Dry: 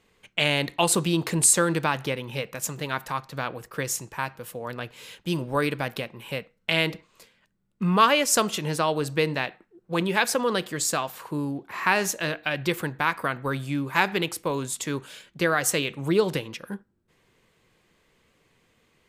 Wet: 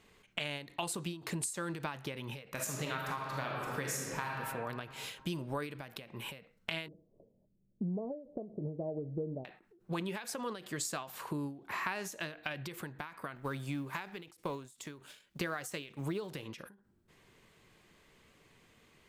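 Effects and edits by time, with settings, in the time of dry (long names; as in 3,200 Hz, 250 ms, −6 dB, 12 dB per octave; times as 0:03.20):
0:02.52–0:04.32: thrown reverb, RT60 1.7 s, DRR −1.5 dB
0:06.88–0:09.45: Butterworth low-pass 660 Hz 48 dB per octave
0:13.35–0:16.43: mu-law and A-law mismatch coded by A
whole clip: notch filter 500 Hz, Q 14; downward compressor 6 to 1, threshold −36 dBFS; every ending faded ahead of time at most 120 dB per second; level +1 dB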